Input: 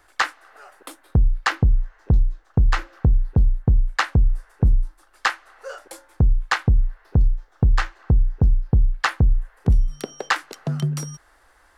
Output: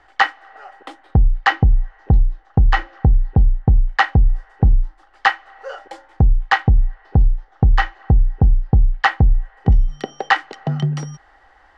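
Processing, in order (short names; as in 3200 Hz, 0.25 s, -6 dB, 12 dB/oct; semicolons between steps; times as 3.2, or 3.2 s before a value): air absorption 150 m; small resonant body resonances 790/1900/3000 Hz, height 13 dB, ringing for 50 ms; gain +3.5 dB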